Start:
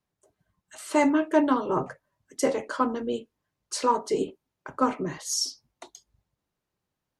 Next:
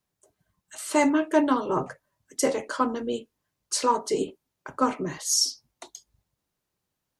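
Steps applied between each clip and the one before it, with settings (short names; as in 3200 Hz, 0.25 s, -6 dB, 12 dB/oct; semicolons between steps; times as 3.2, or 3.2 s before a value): high shelf 4100 Hz +7 dB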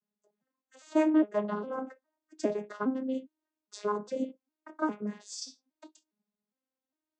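arpeggiated vocoder major triad, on G#3, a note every 0.407 s; gain -5 dB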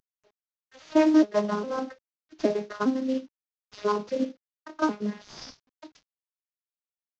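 CVSD 32 kbps; gain +5.5 dB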